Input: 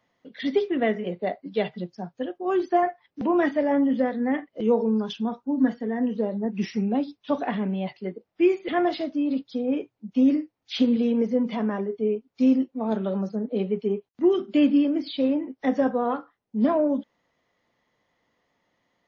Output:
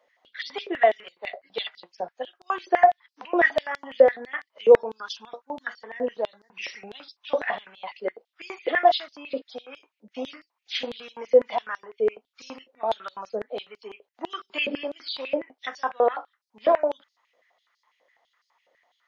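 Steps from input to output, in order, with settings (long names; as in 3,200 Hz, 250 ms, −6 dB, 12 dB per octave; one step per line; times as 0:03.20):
high-pass on a step sequencer 12 Hz 530–4,700 Hz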